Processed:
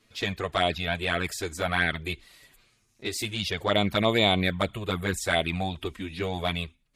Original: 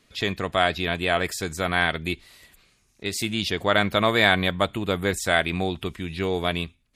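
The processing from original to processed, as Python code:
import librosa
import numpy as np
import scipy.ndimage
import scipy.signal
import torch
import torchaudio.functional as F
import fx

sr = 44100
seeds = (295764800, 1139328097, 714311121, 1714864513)

y = fx.env_flanger(x, sr, rest_ms=9.2, full_db=-16.0)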